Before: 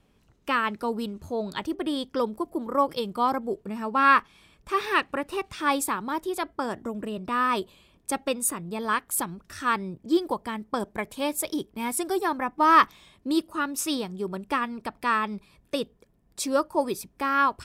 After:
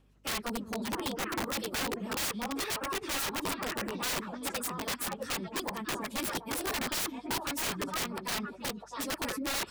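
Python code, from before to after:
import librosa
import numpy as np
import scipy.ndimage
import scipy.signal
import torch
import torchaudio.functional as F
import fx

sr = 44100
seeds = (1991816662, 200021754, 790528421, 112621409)

y = scipy.signal.sosfilt(scipy.signal.butter(2, 120.0, 'highpass', fs=sr, output='sos'), x)
y = fx.echo_stepped(y, sr, ms=594, hz=250.0, octaves=1.4, feedback_pct=70, wet_db=-1)
y = fx.stretch_vocoder_free(y, sr, factor=0.55)
y = fx.add_hum(y, sr, base_hz=50, snr_db=33)
y = (np.mod(10.0 ** (25.5 / 20.0) * y + 1.0, 2.0) - 1.0) / 10.0 ** (25.5 / 20.0)
y = y * 10.0 ** (-2.0 / 20.0)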